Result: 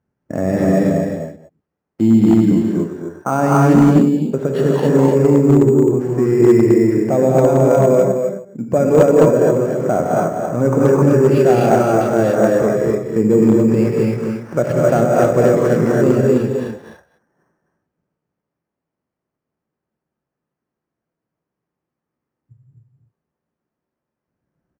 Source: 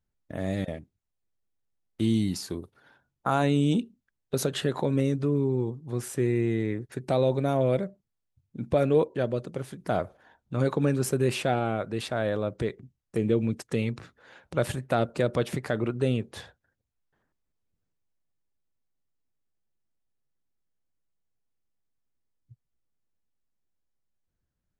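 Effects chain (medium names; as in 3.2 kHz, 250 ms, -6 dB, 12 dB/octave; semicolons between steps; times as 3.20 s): chunks repeated in reverse 118 ms, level -13.5 dB; in parallel at +2 dB: gain riding 2 s; on the sum: saturation -5 dBFS, distortion -24 dB; band-pass 190–2300 Hz; on a send: delay 258 ms -6 dB; on the sum: gated-style reverb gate 300 ms rising, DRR -3.5 dB; careless resampling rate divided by 6×, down filtered, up hold; tilt EQ -3 dB/octave; hard clipper -2.5 dBFS, distortion -24 dB; bass shelf 410 Hz -3.5 dB; trim +1 dB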